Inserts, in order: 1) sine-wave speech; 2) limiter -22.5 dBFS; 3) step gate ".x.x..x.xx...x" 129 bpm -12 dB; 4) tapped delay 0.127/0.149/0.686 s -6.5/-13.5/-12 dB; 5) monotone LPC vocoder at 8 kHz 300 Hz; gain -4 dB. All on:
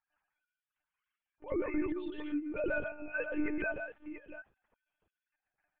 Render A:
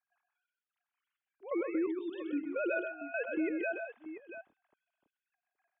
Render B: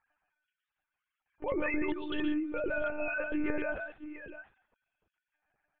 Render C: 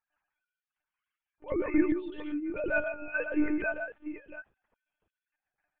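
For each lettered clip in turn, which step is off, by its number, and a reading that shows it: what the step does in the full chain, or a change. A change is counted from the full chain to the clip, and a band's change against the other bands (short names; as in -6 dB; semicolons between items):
5, 2 kHz band -2.5 dB; 3, crest factor change +2.5 dB; 2, mean gain reduction 2.5 dB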